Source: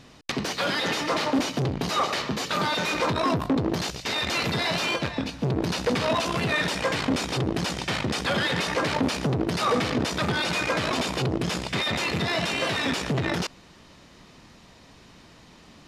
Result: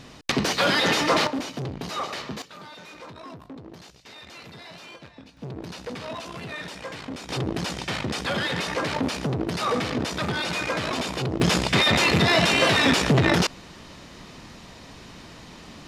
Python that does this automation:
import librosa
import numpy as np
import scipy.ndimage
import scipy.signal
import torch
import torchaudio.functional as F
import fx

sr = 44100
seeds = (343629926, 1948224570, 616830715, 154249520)

y = fx.gain(x, sr, db=fx.steps((0.0, 5.0), (1.27, -5.5), (2.42, -17.5), (5.37, -10.5), (7.29, -1.5), (11.4, 7.0)))